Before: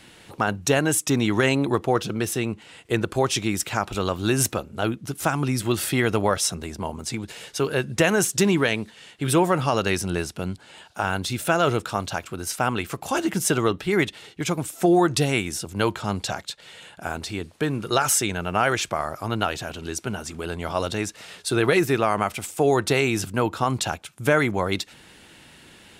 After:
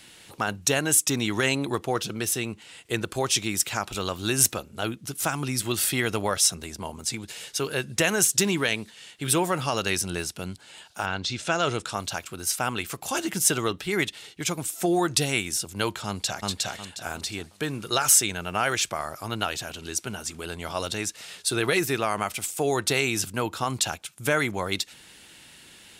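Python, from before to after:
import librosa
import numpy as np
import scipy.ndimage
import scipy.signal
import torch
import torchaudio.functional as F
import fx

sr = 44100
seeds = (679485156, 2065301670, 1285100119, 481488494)

y = fx.lowpass(x, sr, hz=fx.line((11.05, 4800.0), (11.95, 11000.0)), slope=24, at=(11.05, 11.95), fade=0.02)
y = fx.echo_throw(y, sr, start_s=16.06, length_s=0.42, ms=360, feedback_pct=30, wet_db=-0.5)
y = fx.high_shelf(y, sr, hz=2400.0, db=10.5)
y = y * 10.0 ** (-6.0 / 20.0)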